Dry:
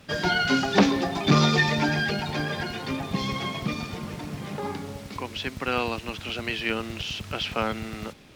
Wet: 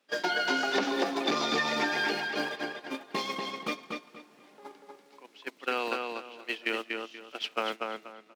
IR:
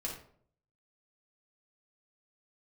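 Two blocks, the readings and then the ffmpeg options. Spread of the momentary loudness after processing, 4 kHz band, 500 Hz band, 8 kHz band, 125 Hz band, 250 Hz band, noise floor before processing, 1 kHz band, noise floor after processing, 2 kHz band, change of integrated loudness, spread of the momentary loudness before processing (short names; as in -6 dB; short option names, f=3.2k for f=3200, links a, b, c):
14 LU, -5.0 dB, -4.0 dB, -5.5 dB, -24.0 dB, -10.0 dB, -43 dBFS, -4.0 dB, -60 dBFS, -4.0 dB, -5.0 dB, 14 LU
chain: -filter_complex "[0:a]agate=range=-22dB:threshold=-27dB:ratio=16:detection=peak,highpass=f=290:w=0.5412,highpass=f=290:w=1.3066,acompressor=threshold=-28dB:ratio=12,asplit=2[a][b];[b]adelay=240,lowpass=f=4.8k:p=1,volume=-3.5dB,asplit=2[c][d];[d]adelay=240,lowpass=f=4.8k:p=1,volume=0.26,asplit=2[e][f];[f]adelay=240,lowpass=f=4.8k:p=1,volume=0.26,asplit=2[g][h];[h]adelay=240,lowpass=f=4.8k:p=1,volume=0.26[i];[a][c][e][g][i]amix=inputs=5:normalize=0,volume=2dB"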